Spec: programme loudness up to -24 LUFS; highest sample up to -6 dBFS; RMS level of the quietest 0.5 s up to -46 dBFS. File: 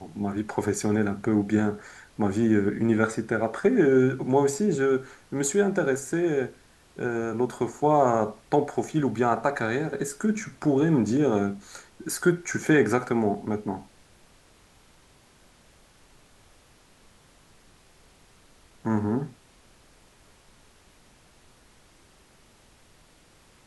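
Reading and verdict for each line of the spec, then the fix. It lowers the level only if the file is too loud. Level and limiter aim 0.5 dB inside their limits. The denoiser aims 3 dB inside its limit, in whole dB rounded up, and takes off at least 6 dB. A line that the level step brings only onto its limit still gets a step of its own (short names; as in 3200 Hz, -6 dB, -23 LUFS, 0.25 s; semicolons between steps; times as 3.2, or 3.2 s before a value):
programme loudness -25.5 LUFS: OK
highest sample -7.5 dBFS: OK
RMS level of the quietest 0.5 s -57 dBFS: OK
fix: none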